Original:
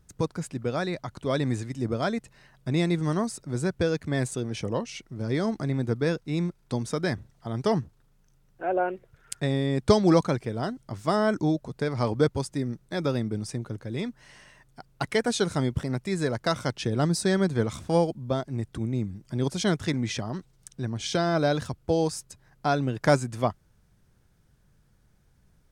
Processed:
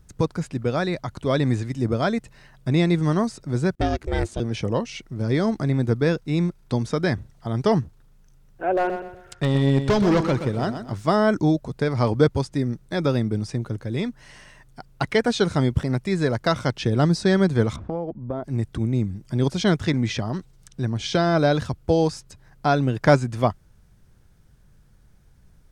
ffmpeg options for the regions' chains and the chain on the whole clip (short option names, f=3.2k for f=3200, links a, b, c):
-filter_complex "[0:a]asettb=1/sr,asplit=3[a][b][c];[a]atrim=end=3.754[d];[b]atrim=start=3.75:end=4.4,asetpts=PTS-STARTPTS,afade=t=in:d=0.004:c=qsin,afade=t=out:st=0.646:d=0.004:c=qsin,agate=range=-33dB:threshold=-51dB:ratio=3:release=100:detection=peak,aeval=exprs='val(0)*sin(2*PI*220*n/s)':c=same[e];[c]atrim=start=4.396[f];[d][e]acrossfade=d=0.004:c1=hsin:c2=qsin[g];[g][f]acrossfade=d=0.004:c1=qsin:c2=hsin,asettb=1/sr,asplit=3[h][i][j];[h]atrim=end=8.724[k];[i]atrim=start=8.72:end=10.95,asetpts=PTS-STARTPTS,afade=t=in:d=0.004:c=qsin,afade=t=out:st=2.226:d=0.004:c=qsin,volume=20.5dB,asoftclip=hard,volume=-20.5dB,aecho=1:1:124|248|372|496:0.355|0.121|0.041|0.0139,atrim=end_sample=98343[l];[j]atrim=start=10.946[m];[k][l]acrossfade=d=0.004:c1=hsin:c2=qsin[n];[n][m]acrossfade=d=0.004:c1=qsin:c2=hsin,asettb=1/sr,asplit=3[o][p][q];[o]atrim=end=17.764[r];[p]atrim=start=17.76:end=18.44,asetpts=PTS-STARTPTS,afade=t=in:d=0.004:c=qsin,afade=t=out:st=0.676:d=0.004:c=qsin,lowpass=1.2k,equalizer=f=140:w=3.9:g=-7.5,acompressor=threshold=-28dB:ratio=6:attack=3.2:release=140:knee=1:detection=peak[s];[q]atrim=start=18.436[t];[r][s]acrossfade=d=0.004:c1=hsin:c2=qsin[u];[u][t]acrossfade=d=0.004:c1=qsin:c2=hsin,lowshelf=f=79:g=6.5,acrossover=split=5800[v][w];[w]acompressor=threshold=-54dB:ratio=4:attack=1:release=60[x];[v][x]amix=inputs=2:normalize=0,volume=4.5dB"